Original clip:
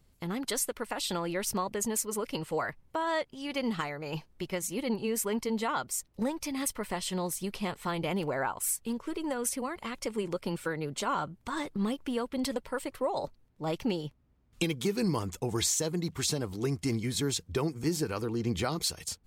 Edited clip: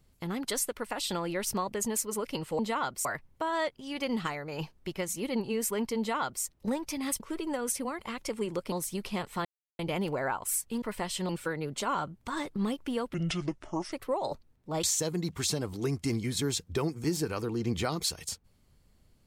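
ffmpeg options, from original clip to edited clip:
-filter_complex "[0:a]asplit=11[a][b][c][d][e][f][g][h][i][j][k];[a]atrim=end=2.592[l];[b]atrim=start=5.518:end=5.982[m];[c]atrim=start=2.588:end=6.742[n];[d]atrim=start=8.968:end=10.492[o];[e]atrim=start=7.208:end=7.94,asetpts=PTS-STARTPTS,afade=t=out:st=0.728:d=0.004:c=hsin,apad=pad_dur=0.34[p];[f]atrim=start=7.94:end=8.972,asetpts=PTS-STARTPTS,afade=t=in:d=0.004:c=hsin[q];[g]atrim=start=6.738:end=7.212[r];[h]atrim=start=10.488:end=12.344[s];[i]atrim=start=12.34:end=12.85,asetpts=PTS-STARTPTS,asetrate=28665,aresample=44100[t];[j]atrim=start=12.846:end=13.762[u];[k]atrim=start=15.628[v];[l][m]acrossfade=d=0.004:c1=hsin:c2=hsin[w];[w][n]acrossfade=d=0.004:c1=hsin:c2=hsin[x];[x][o]acrossfade=d=0.004:c1=hsin:c2=hsin[y];[p][q]concat=n=2:v=0:a=1[z];[y][z]acrossfade=d=0.004:c1=hsin:c2=hsin[aa];[aa][r]acrossfade=d=0.004:c1=hsin:c2=hsin[ab];[ab][s]acrossfade=d=0.004:c1=hsin:c2=hsin[ac];[ac][t]acrossfade=d=0.004:c1=hsin:c2=hsin[ad];[ad][u]acrossfade=d=0.004:c1=hsin:c2=hsin[ae];[ae][v]acrossfade=d=0.004:c1=hsin:c2=hsin"

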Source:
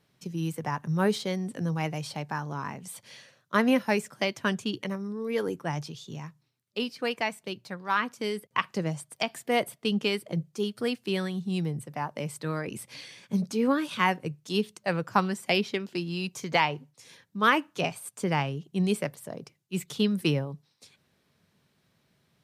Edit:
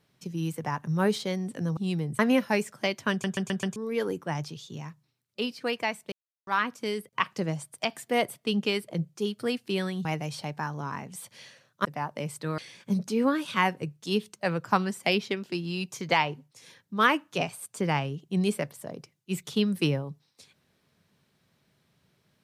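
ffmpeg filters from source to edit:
-filter_complex "[0:a]asplit=13[a][b][c][d][e][f][g][h][i][j][k][l][m];[a]atrim=end=1.772[n];[b]atrim=start=11.428:end=11.852[o];[c]atrim=start=3.568:end=4.622[p];[d]atrim=start=4.488:end=4.622[q];[e]atrim=start=4.488:end=4.622[r];[f]atrim=start=4.488:end=4.622[s];[g]atrim=start=4.488:end=4.622[t];[h]atrim=start=5.138:end=7.5,asetpts=PTS-STARTPTS,afade=t=out:st=2.358:d=0.004:c=hsin[u];[i]atrim=start=7.5:end=7.85,asetpts=PTS-STARTPTS,volume=0[v];[j]atrim=start=7.85:end=11.432,asetpts=PTS-STARTPTS,afade=t=in:d=0.004:c=hsin[w];[k]atrim=start=1.768:end=3.572[x];[l]atrim=start=11.848:end=12.582[y];[m]atrim=start=13.008[z];[n][o]acrossfade=d=0.004:c1=hsin:c2=hsin[aa];[aa][p]acrossfade=d=0.004:c1=hsin:c2=hsin[ab];[ab][q]acrossfade=d=0.004:c1=hsin:c2=hsin[ac];[ac][r]acrossfade=d=0.004:c1=hsin:c2=hsin[ad];[ad][s]acrossfade=d=0.004:c1=hsin:c2=hsin[ae];[ae][t]acrossfade=d=0.004:c1=hsin:c2=hsin[af];[u][v][w]concat=n=3:v=0:a=1[ag];[af][ag]acrossfade=d=0.004:c1=hsin:c2=hsin[ah];[ah][x]acrossfade=d=0.004:c1=hsin:c2=hsin[ai];[ai][y]acrossfade=d=0.004:c1=hsin:c2=hsin[aj];[aj][z]acrossfade=d=0.004:c1=hsin:c2=hsin"

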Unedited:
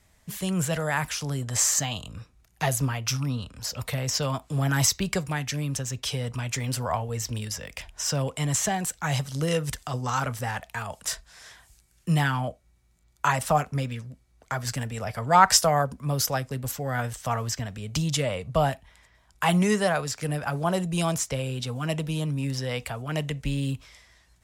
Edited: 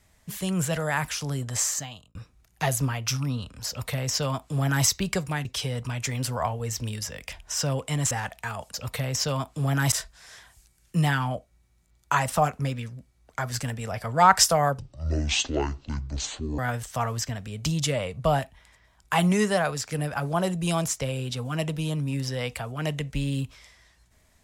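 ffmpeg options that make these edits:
-filter_complex "[0:a]asplit=8[a][b][c][d][e][f][g][h];[a]atrim=end=2.15,asetpts=PTS-STARTPTS,afade=t=out:st=1.41:d=0.74[i];[b]atrim=start=2.15:end=5.452,asetpts=PTS-STARTPTS,afade=t=in:d=0.004:c=hsin[j];[c]atrim=start=5.938:end=8.602[k];[d]atrim=start=10.418:end=11.052[l];[e]atrim=start=3.678:end=4.862[m];[f]atrim=start=11.048:end=15.924[n];[g]atrim=start=15.92:end=16.89,asetpts=PTS-STARTPTS,asetrate=23814,aresample=44100[o];[h]atrim=start=16.886[p];[i][j]concat=n=2:v=0:a=1[q];[q][k]acrossfade=d=0.004:c1=hsin:c2=hsin[r];[r][l]acrossfade=d=0.004:c1=hsin:c2=hsin[s];[s][m]acrossfade=d=0.004:c1=hsin:c2=hsin[t];[t][n]acrossfade=d=0.004:c1=hsin:c2=hsin[u];[u][o]acrossfade=d=0.004:c1=hsin:c2=hsin[v];[v][p]acrossfade=d=0.004:c1=hsin:c2=hsin"

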